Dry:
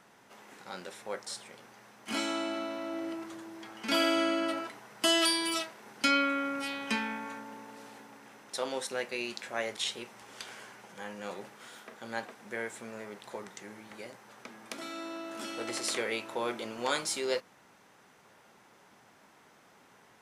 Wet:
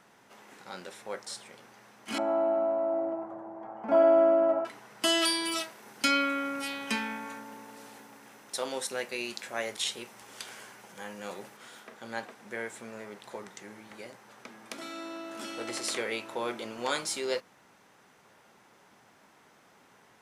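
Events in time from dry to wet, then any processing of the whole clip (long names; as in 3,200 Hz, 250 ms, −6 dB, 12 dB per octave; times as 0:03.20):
0:02.18–0:04.65: drawn EQ curve 410 Hz 0 dB, 690 Hz +14 dB, 3,800 Hz −29 dB
0:05.58–0:11.57: high-shelf EQ 8,300 Hz +9 dB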